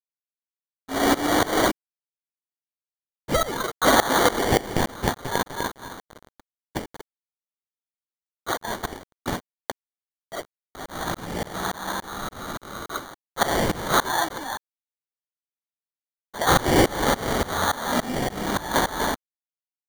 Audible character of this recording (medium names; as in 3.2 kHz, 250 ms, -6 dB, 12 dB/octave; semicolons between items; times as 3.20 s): tremolo saw up 3.5 Hz, depth 95%; a quantiser's noise floor 8-bit, dither none; phasing stages 12, 0.22 Hz, lowest notch 680–2100 Hz; aliases and images of a low sample rate 2.6 kHz, jitter 0%